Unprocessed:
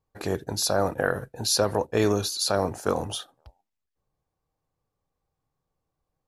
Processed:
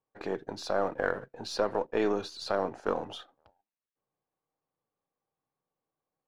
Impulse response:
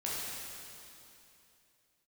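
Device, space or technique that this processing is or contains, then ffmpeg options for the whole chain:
crystal radio: -af "highpass=210,lowpass=2.9k,aeval=exprs='if(lt(val(0),0),0.708*val(0),val(0))':c=same,volume=-3dB"

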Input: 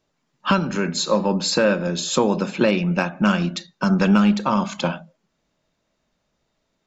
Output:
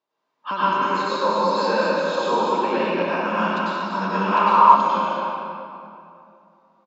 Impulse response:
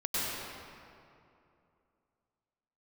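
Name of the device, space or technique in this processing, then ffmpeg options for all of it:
station announcement: -filter_complex "[0:a]highpass=320,lowpass=4.9k,equalizer=f=1k:t=o:w=0.49:g=10.5,aecho=1:1:207|239.1:0.355|0.355[a];[1:a]atrim=start_sample=2205[b];[a][b]afir=irnorm=-1:irlink=0,asettb=1/sr,asplit=3[c][d][e];[c]atrim=end=4.324[f];[d]atrim=start=4.32:end=4.76,asetpts=PTS-STARTPTS,afade=t=in:d=0.004:c=qsin,afade=t=out:st=0.436:d=0.004:c=qsin,equalizer=f=100:t=o:w=0.67:g=4,equalizer=f=250:t=o:w=0.67:g=-6,equalizer=f=1k:t=o:w=0.67:g=10,equalizer=f=2.5k:t=o:w=0.67:g=4[g];[e]atrim=start=4.756[h];[f][g]acrossfade=d=0.004:c1=hsin:c2=qsin[i];[i][h]acrossfade=d=0.004:c1=qsin:c2=hsin,acrossover=split=5300[j][k];[k]acompressor=threshold=-37dB:ratio=4:attack=1:release=60[l];[j][l]amix=inputs=2:normalize=0,volume=-10.5dB"

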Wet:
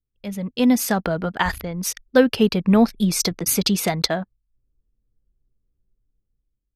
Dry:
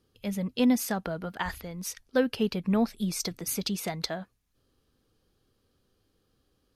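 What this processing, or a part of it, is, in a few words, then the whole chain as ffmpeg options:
voice memo with heavy noise removal: -af "anlmdn=0.0398,dynaudnorm=f=310:g=5:m=10dB,volume=1.5dB"

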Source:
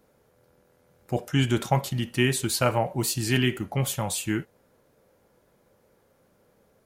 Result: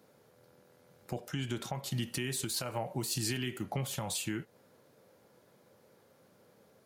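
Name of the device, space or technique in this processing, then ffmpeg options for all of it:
broadcast voice chain: -filter_complex "[0:a]highpass=f=95:w=0.5412,highpass=f=95:w=1.3066,deesser=0.5,acompressor=threshold=-31dB:ratio=4,equalizer=f=4.3k:t=o:w=0.83:g=4,alimiter=level_in=0.5dB:limit=-24dB:level=0:latency=1:release=190,volume=-0.5dB,asettb=1/sr,asplit=3[a][b][c];[a]atrim=end=1.714[d];[b]atrim=start=1.71:end=3.63,asetpts=PTS-STARTPTS,afade=t=in:d=0.004:c=qsin,afade=t=out:st=1.916:d=0.004:c=qsin,adynamicequalizer=threshold=0.00355:dfrequency=5200:dqfactor=0.7:tfrequency=5200:tqfactor=0.7:attack=5:release=100:ratio=0.375:range=2.5:mode=boostabove:tftype=highshelf[e];[c]atrim=start=3.626[f];[d][e]acrossfade=d=0.004:c1=hsin:c2=qsin[g];[g][f]acrossfade=d=0.004:c1=qsin:c2=hsin"

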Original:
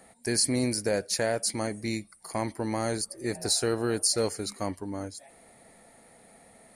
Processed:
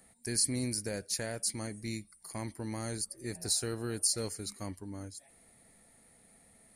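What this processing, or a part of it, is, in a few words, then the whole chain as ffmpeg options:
smiley-face EQ: -af "lowshelf=f=130:g=7,equalizer=f=680:t=o:w=1.7:g=-6,highshelf=f=8.5k:g=8.5,volume=-7.5dB"

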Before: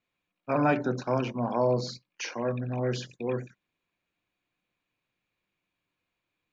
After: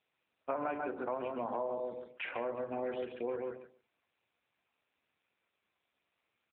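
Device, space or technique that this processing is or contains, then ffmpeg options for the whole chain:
voicemail: -filter_complex "[0:a]asettb=1/sr,asplit=3[a][b][c];[a]atrim=end=1.924[d];[b]atrim=start=1.92:end=2.44,asetpts=PTS-STARTPTS,afade=t=in:d=0.004:c=qsin,afade=t=out:st=0.516:d=0.004:c=qsin,acrossover=split=4200[e][f];[f]acompressor=threshold=-48dB:ratio=4:attack=1:release=60[g];[e][g]amix=inputs=2:normalize=0[h];[c]atrim=start=2.436[i];[d][h]acrossfade=d=0.004:c1=hsin:c2=qsin[j];[j][i]acrossfade=d=0.004:c1=qsin:c2=hsin,highpass=410,lowpass=2.7k,asplit=2[k][l];[l]adelay=139,lowpass=f=1.9k:p=1,volume=-4dB,asplit=2[m][n];[n]adelay=139,lowpass=f=1.9k:p=1,volume=0.15,asplit=2[o][p];[p]adelay=139,lowpass=f=1.9k:p=1,volume=0.15[q];[k][m][o][q]amix=inputs=4:normalize=0,acompressor=threshold=-37dB:ratio=6,volume=4dB" -ar 8000 -c:a libopencore_amrnb -b:a 7400

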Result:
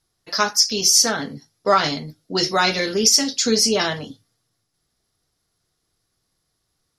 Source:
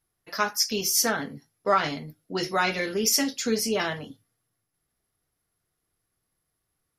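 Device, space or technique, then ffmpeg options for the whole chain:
over-bright horn tweeter: -af "lowpass=7.2k,highshelf=f=3.3k:t=q:w=1.5:g=6.5,alimiter=limit=-9.5dB:level=0:latency=1:release=324,volume=6dB"

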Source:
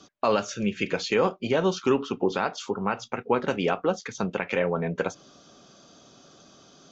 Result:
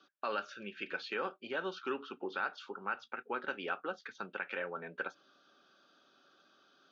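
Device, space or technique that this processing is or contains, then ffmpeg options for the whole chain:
phone earpiece: -af "highpass=470,equalizer=f=470:t=q:w=4:g=-7,equalizer=f=680:t=q:w=4:g=-9,equalizer=f=1k:t=q:w=4:g=-7,equalizer=f=1.5k:t=q:w=4:g=7,equalizer=f=2.1k:t=q:w=4:g=-7,equalizer=f=3.2k:t=q:w=4:g=-3,lowpass=f=3.9k:w=0.5412,lowpass=f=3.9k:w=1.3066,volume=-7.5dB"

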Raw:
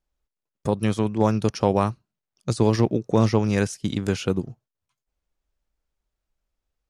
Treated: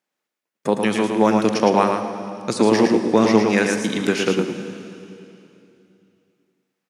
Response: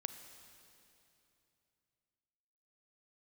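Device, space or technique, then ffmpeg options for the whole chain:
PA in a hall: -filter_complex "[0:a]highpass=f=190:w=0.5412,highpass=f=190:w=1.3066,equalizer=f=2k:t=o:w=0.97:g=6,aecho=1:1:111:0.562[a];[1:a]atrim=start_sample=2205[b];[a][b]afir=irnorm=-1:irlink=0,volume=6.5dB"

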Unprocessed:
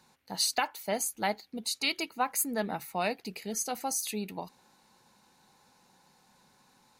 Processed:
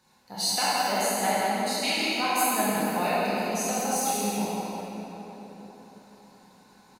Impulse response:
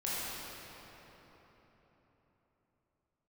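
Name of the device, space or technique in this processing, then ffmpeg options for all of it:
cave: -filter_complex "[0:a]aecho=1:1:171:0.398[a];[1:a]atrim=start_sample=2205[b];[a][b]afir=irnorm=-1:irlink=0"

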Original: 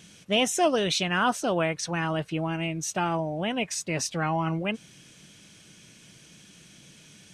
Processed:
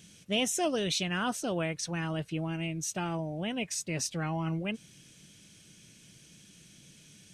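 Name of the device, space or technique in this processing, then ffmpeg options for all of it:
smiley-face EQ: -af "lowshelf=f=180:g=4,equalizer=f=990:t=o:w=1.5:g=-5.5,highshelf=f=7.5k:g=5.5,volume=-5dB"

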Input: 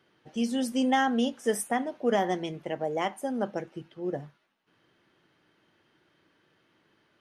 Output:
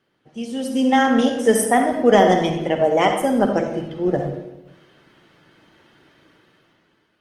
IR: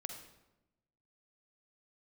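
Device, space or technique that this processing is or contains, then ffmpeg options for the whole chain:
speakerphone in a meeting room: -filter_complex "[0:a]asplit=3[a][b][c];[a]afade=t=out:st=0.97:d=0.02[d];[b]adynamicequalizer=threshold=0.002:dfrequency=2900:dqfactor=6.2:tfrequency=2900:tqfactor=6.2:attack=5:release=100:ratio=0.375:range=3:mode=cutabove:tftype=bell,afade=t=in:st=0.97:d=0.02,afade=t=out:st=1.9:d=0.02[e];[c]afade=t=in:st=1.9:d=0.02[f];[d][e][f]amix=inputs=3:normalize=0[g];[1:a]atrim=start_sample=2205[h];[g][h]afir=irnorm=-1:irlink=0,dynaudnorm=f=210:g=9:m=13dB,volume=2.5dB" -ar 48000 -c:a libopus -b:a 20k

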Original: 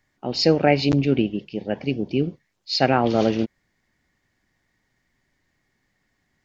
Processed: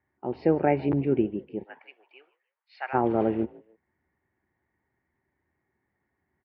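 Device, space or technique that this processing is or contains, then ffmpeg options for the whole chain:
bass cabinet: -filter_complex "[0:a]highpass=63,equalizer=f=75:t=q:w=4:g=9,equalizer=f=370:t=q:w=4:g=9,equalizer=f=880:t=q:w=4:g=7,lowpass=f=2.1k:w=0.5412,lowpass=f=2.1k:w=1.3066,asplit=3[a][b][c];[a]afade=t=out:st=1.63:d=0.02[d];[b]highpass=f=1k:w=0.5412,highpass=f=1k:w=1.3066,afade=t=in:st=1.63:d=0.02,afade=t=out:st=2.93:d=0.02[e];[c]afade=t=in:st=2.93:d=0.02[f];[d][e][f]amix=inputs=3:normalize=0,asplit=3[g][h][i];[h]adelay=151,afreqshift=54,volume=-23dB[j];[i]adelay=302,afreqshift=108,volume=-33.2dB[k];[g][j][k]amix=inputs=3:normalize=0,volume=-7.5dB"

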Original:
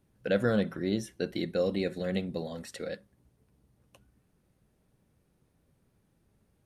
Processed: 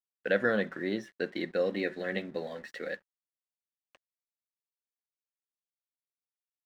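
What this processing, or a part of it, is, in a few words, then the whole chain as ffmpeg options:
pocket radio on a weak battery: -filter_complex "[0:a]asettb=1/sr,asplit=3[a][b][c];[a]atrim=end=1.714[d];[b]atrim=start=1.71:end=2.87,asetpts=PTS-STARTPTS,afade=t=in:d=0.004:c=qsin,afade=t=out:st=1.156:d=0.004:c=qsin,asplit=2[e][f];[f]adelay=14,volume=-9dB[g];[e][g]amix=inputs=2:normalize=0,atrim=end_sample=51156[h];[c]atrim=start=2.866[i];[d][h]acrossfade=d=0.004:c1=hsin:c2=qsin[j];[j][i]acrossfade=d=0.004:c1=qsin:c2=hsin,highpass=250,lowpass=3.8k,aeval=exprs='sgn(val(0))*max(abs(val(0))-0.00112,0)':c=same,equalizer=f=1.8k:t=o:w=0.42:g=10.5"

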